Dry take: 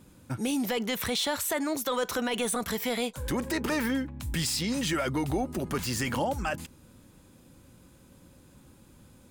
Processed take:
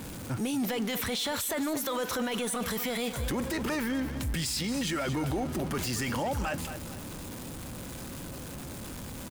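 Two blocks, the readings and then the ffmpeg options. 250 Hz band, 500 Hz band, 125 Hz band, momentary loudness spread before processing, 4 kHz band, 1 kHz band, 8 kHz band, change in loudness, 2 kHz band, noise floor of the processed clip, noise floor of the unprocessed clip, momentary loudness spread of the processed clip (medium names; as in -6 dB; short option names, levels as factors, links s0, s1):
-1.0 dB, -2.0 dB, +1.0 dB, 5 LU, -1.5 dB, -2.0 dB, -1.0 dB, -2.5 dB, -1.5 dB, -41 dBFS, -56 dBFS, 10 LU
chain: -af "aeval=exprs='val(0)+0.5*0.0158*sgn(val(0))':c=same,aecho=1:1:226|452|678|904:0.2|0.0778|0.0303|0.0118,alimiter=limit=0.0631:level=0:latency=1:release=10"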